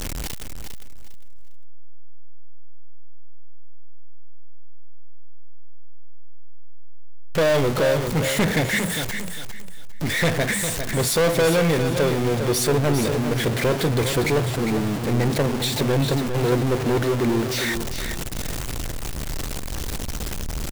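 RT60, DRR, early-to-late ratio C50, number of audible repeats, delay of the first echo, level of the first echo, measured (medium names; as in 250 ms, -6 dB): no reverb, no reverb, no reverb, 3, 403 ms, -8.0 dB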